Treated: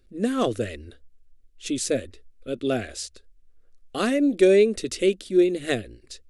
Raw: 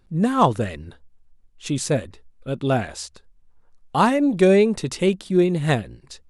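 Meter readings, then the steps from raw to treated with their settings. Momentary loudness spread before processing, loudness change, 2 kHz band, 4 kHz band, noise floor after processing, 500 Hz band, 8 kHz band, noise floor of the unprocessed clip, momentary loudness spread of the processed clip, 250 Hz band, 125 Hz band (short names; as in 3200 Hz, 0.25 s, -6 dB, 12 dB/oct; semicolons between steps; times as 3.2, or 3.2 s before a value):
19 LU, -2.5 dB, -3.0 dB, -1.0 dB, -57 dBFS, -1.0 dB, 0.0 dB, -57 dBFS, 19 LU, -3.0 dB, -12.5 dB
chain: fixed phaser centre 380 Hz, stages 4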